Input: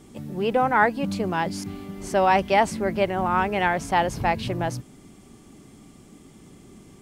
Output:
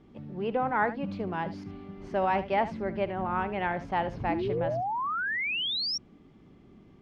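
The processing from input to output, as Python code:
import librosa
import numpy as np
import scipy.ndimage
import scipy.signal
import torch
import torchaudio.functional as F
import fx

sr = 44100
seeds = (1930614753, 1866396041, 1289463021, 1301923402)

y = fx.air_absorb(x, sr, metres=280.0)
y = y + 10.0 ** (-14.0 / 20.0) * np.pad(y, (int(74 * sr / 1000.0), 0))[:len(y)]
y = fx.spec_paint(y, sr, seeds[0], shape='rise', start_s=4.29, length_s=1.69, low_hz=290.0, high_hz=5700.0, level_db=-24.0)
y = y * 10.0 ** (-6.5 / 20.0)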